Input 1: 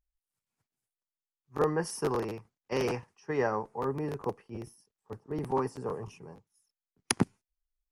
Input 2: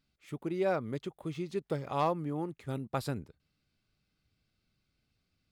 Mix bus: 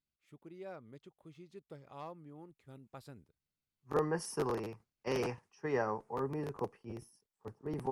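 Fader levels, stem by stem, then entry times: -4.5 dB, -17.0 dB; 2.35 s, 0.00 s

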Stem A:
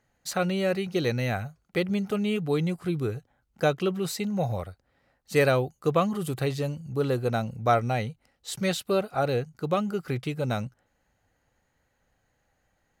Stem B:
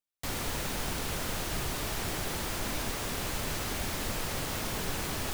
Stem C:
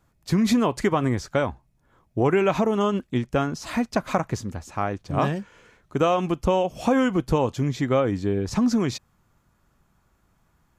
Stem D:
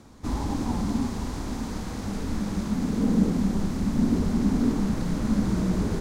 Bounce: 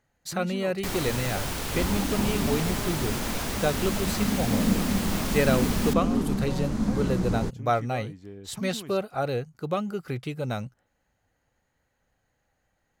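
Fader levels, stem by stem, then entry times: -2.0 dB, +2.5 dB, -18.5 dB, -2.5 dB; 0.00 s, 0.60 s, 0.00 s, 1.50 s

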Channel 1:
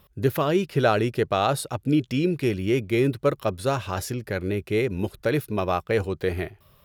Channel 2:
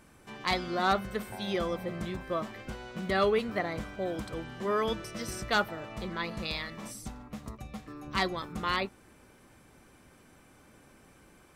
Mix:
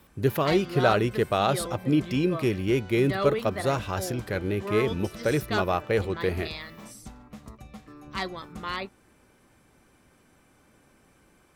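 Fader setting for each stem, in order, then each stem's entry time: -1.5 dB, -2.5 dB; 0.00 s, 0.00 s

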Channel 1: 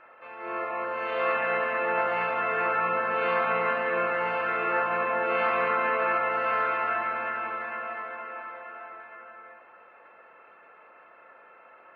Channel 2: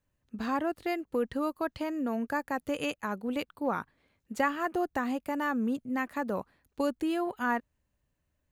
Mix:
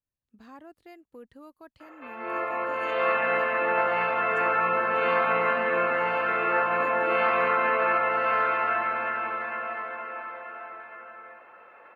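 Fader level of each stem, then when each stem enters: +2.0 dB, -17.0 dB; 1.80 s, 0.00 s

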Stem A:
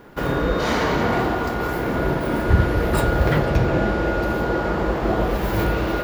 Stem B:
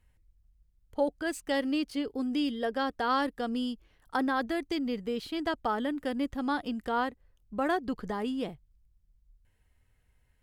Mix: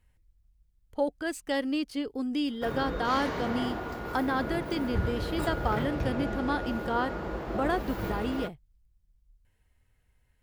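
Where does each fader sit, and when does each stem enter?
-13.0 dB, 0.0 dB; 2.45 s, 0.00 s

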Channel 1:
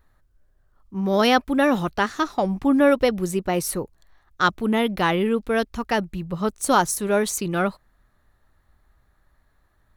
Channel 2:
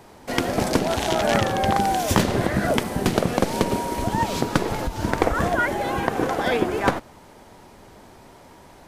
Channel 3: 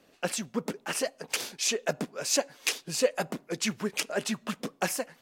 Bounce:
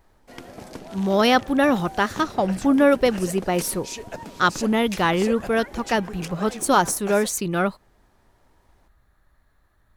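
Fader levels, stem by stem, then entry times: +0.5 dB, -17.5 dB, -7.0 dB; 0.00 s, 0.00 s, 2.25 s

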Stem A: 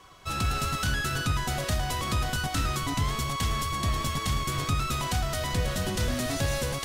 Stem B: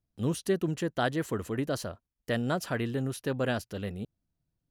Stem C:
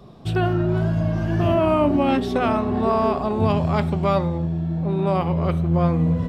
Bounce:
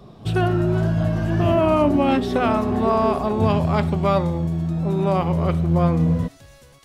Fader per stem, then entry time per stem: -19.5 dB, -12.5 dB, +1.0 dB; 0.00 s, 0.00 s, 0.00 s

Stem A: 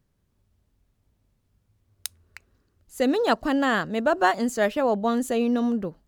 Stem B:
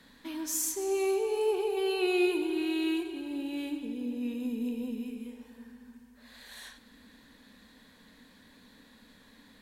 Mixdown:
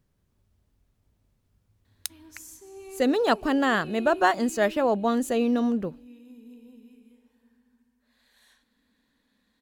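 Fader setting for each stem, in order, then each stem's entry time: -0.5 dB, -14.5 dB; 0.00 s, 1.85 s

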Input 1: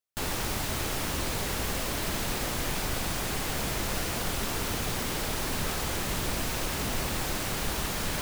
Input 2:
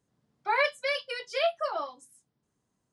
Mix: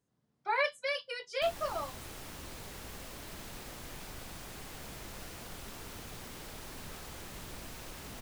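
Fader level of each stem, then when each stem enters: -15.0 dB, -4.5 dB; 1.25 s, 0.00 s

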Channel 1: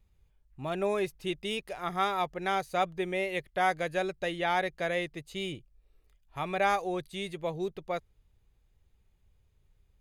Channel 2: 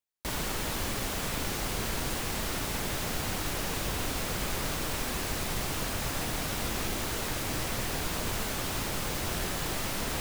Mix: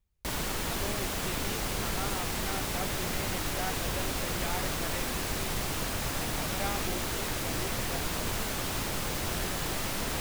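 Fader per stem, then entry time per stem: -10.5 dB, 0.0 dB; 0.00 s, 0.00 s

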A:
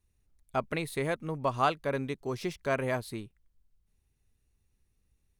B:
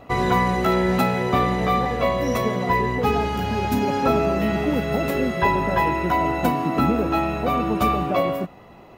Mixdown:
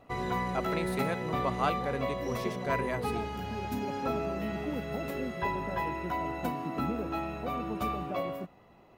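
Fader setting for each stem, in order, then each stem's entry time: -3.5 dB, -12.5 dB; 0.00 s, 0.00 s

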